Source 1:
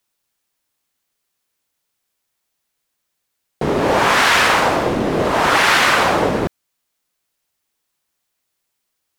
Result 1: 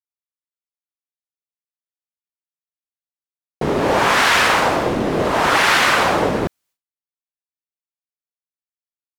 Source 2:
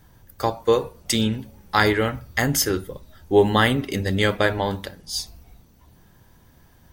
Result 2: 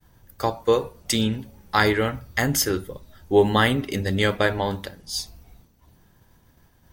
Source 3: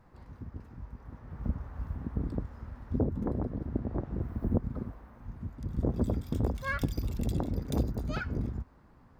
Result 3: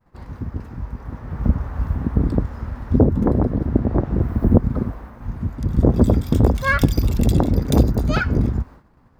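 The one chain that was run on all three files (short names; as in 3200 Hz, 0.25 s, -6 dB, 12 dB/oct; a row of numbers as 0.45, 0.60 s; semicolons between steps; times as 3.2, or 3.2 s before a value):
expander -49 dBFS; normalise peaks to -2 dBFS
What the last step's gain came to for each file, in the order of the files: -1.0, -1.0, +14.5 dB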